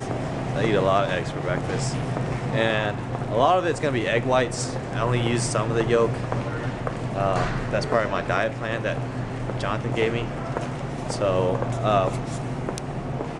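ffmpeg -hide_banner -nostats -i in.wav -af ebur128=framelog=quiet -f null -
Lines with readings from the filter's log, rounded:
Integrated loudness:
  I:         -24.7 LUFS
  Threshold: -34.7 LUFS
Loudness range:
  LRA:         3.1 LU
  Threshold: -44.6 LUFS
  LRA low:   -26.2 LUFS
  LRA high:  -23.1 LUFS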